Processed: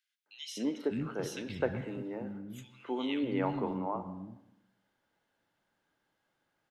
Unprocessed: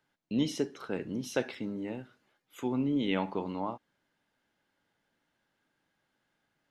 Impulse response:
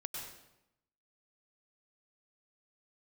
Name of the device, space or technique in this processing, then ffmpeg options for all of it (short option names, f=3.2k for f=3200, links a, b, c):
filtered reverb send: -filter_complex "[0:a]asettb=1/sr,asplit=3[a][b][c];[a]atrim=end=0.634[d];[b]atrim=start=0.63:end=1.21,asetpts=PTS-STARTPTS,afade=t=in:d=0.004:c=qsin,afade=t=out:st=0.576:d=0.004:c=qsin,lowshelf=f=160:t=q:w=1.5:g=8[e];[c]atrim=start=1.206[f];[d][e]acrossfade=d=0.004:c1=hsin:c2=qsin[g];[g][f]acrossfade=d=0.004:c1=qsin:c2=hsin,acrossover=split=240|2100[h][i][j];[i]adelay=260[k];[h]adelay=600[l];[l][k][j]amix=inputs=3:normalize=0,asplit=2[m][n];[n]highpass=f=230:p=1,lowpass=3.5k[o];[1:a]atrim=start_sample=2205[p];[o][p]afir=irnorm=-1:irlink=0,volume=-6.5dB[q];[m][q]amix=inputs=2:normalize=0,volume=-1.5dB"